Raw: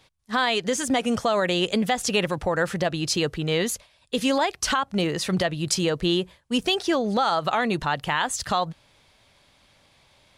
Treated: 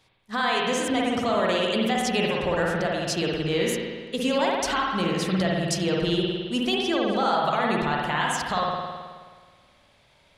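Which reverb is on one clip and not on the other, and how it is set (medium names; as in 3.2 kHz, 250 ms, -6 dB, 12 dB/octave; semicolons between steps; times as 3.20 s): spring tank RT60 1.6 s, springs 53 ms, chirp 40 ms, DRR -2.5 dB; trim -4.5 dB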